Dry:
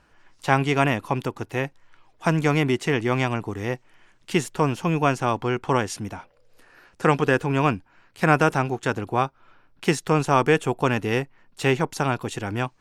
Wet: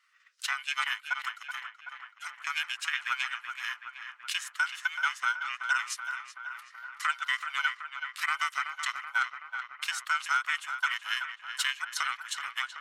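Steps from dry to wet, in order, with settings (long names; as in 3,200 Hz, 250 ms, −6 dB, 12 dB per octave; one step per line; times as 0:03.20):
frequency inversion band by band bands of 500 Hz
elliptic high-pass filter 1,300 Hz, stop band 80 dB
transient designer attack +10 dB, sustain −3 dB
0:01.34–0:02.47: downward compressor 4 to 1, threshold −38 dBFS, peak gain reduction 18 dB
brickwall limiter −13 dBFS, peak gain reduction 11.5 dB
feedback echo with a low-pass in the loop 378 ms, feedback 71%, low-pass 2,900 Hz, level −7.5 dB
level −4 dB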